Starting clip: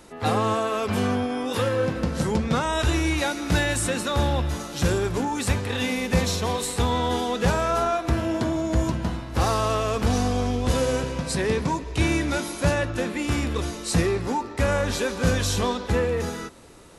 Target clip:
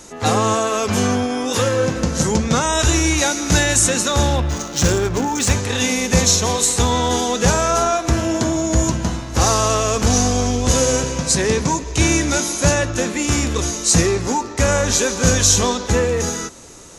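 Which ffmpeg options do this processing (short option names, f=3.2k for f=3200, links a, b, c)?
-filter_complex "[0:a]equalizer=f=6.5k:t=o:w=0.6:g=15,asettb=1/sr,asplit=3[a][b][c];[a]atrim=end=4.364[d];[b]atrim=start=4.36:end=5.51,asetpts=PTS-STARTPTS,afade=t=in:d=0.004:c=qsin,afade=t=out:st=1.146:d=0.004:c=qsin,adynamicsmooth=sensitivity=5:basefreq=2.2k[e];[c]atrim=start=5.506[f];[d][e]acrossfade=d=0.004:c1=hsin:c2=qsin[g];[g][f]acrossfade=d=0.004:c1=qsin:c2=hsin,volume=5.5dB"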